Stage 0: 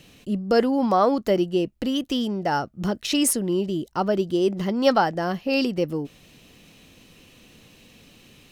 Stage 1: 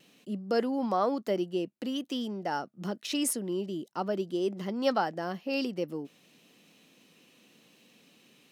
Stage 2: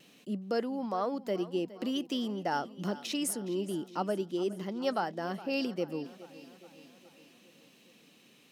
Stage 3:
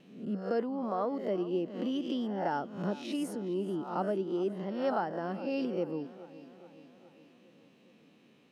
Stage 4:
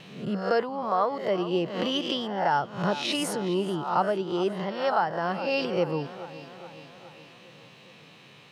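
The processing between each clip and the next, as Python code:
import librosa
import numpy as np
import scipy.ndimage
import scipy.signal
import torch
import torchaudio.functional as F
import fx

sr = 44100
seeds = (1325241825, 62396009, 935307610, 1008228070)

y1 = scipy.signal.sosfilt(scipy.signal.butter(4, 170.0, 'highpass', fs=sr, output='sos'), x)
y1 = fx.vibrato(y1, sr, rate_hz=0.94, depth_cents=14.0)
y1 = y1 * librosa.db_to_amplitude(-8.5)
y2 = fx.rider(y1, sr, range_db=5, speed_s=0.5)
y2 = fx.echo_feedback(y2, sr, ms=416, feedback_pct=58, wet_db=-17.0)
y2 = y2 * librosa.db_to_amplitude(-2.0)
y3 = fx.spec_swells(y2, sr, rise_s=0.57)
y3 = fx.lowpass(y3, sr, hz=1100.0, slope=6)
y4 = fx.graphic_eq(y3, sr, hz=(125, 250, 1000, 2000, 4000, 8000), db=(10, -12, 6, 4, 7, 3))
y4 = fx.rider(y4, sr, range_db=5, speed_s=0.5)
y4 = y4 * librosa.db_to_amplitude(7.0)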